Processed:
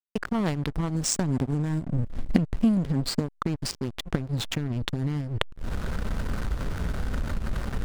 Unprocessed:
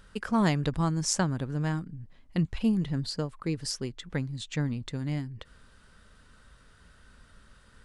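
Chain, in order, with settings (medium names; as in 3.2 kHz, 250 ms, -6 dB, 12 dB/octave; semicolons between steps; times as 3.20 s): recorder AGC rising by 78 dB/s; 0.95–3.39 s: graphic EQ with 31 bands 250 Hz +9 dB, 1.25 kHz -10 dB, 8 kHz +9 dB; hysteresis with a dead band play -21.5 dBFS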